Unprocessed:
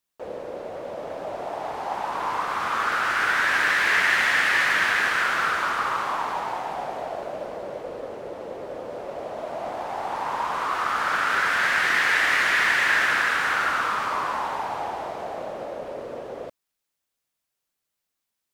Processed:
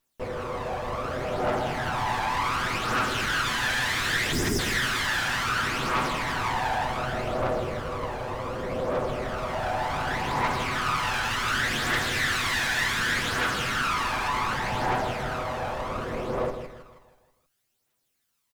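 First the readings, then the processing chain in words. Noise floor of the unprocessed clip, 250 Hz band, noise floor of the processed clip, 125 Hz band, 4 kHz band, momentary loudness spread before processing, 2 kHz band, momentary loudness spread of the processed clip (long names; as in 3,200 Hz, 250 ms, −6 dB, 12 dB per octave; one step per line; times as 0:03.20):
−82 dBFS, +7.0 dB, −76 dBFS, +14.5 dB, +1.5 dB, 16 LU, −5.5 dB, 7 LU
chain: lower of the sound and its delayed copy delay 8 ms
time-frequency box erased 0:04.32–0:04.59, 460–4,800 Hz
in parallel at 0 dB: compressor whose output falls as the input rises −31 dBFS
on the sum: soft clipping −23 dBFS, distortion −10 dB
repeating echo 160 ms, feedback 47%, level −5.5 dB
phase shifter 0.67 Hz, delay 1.3 ms, feedback 44%
level −2.5 dB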